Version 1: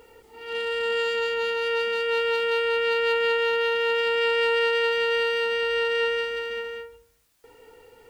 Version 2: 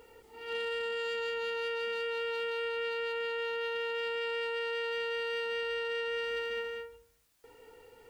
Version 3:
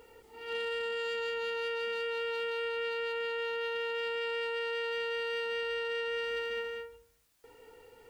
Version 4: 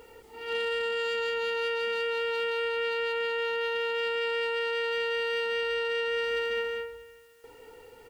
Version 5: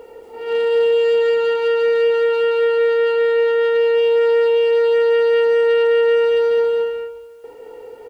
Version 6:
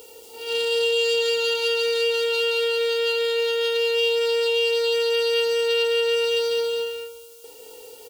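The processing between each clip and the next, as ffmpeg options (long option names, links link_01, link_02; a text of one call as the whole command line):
ffmpeg -i in.wav -af "alimiter=level_in=0.5dB:limit=-24dB:level=0:latency=1,volume=-0.5dB,volume=-4.5dB" out.wav
ffmpeg -i in.wav -af anull out.wav
ffmpeg -i in.wav -af "aecho=1:1:288|576|864:0.0708|0.0347|0.017,volume=5dB" out.wav
ffmpeg -i in.wav -af "equalizer=frequency=520:width_type=o:width=2.1:gain=14,aecho=1:1:221.6|265.3:0.562|0.251" out.wav
ffmpeg -i in.wav -af "aexciter=amount=13.9:drive=3.3:freq=2800,volume=-8dB" out.wav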